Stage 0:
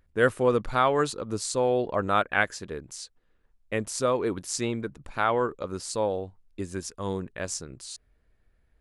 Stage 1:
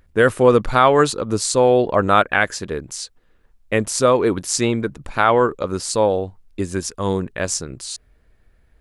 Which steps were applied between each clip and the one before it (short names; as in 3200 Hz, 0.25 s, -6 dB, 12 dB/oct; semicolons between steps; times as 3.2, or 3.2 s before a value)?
maximiser +11 dB; gain -1 dB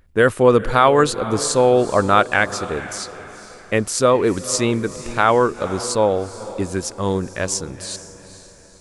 diffused feedback echo 0.47 s, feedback 44%, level -14.5 dB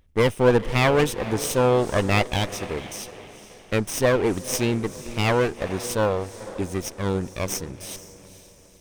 minimum comb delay 0.34 ms; gain -4 dB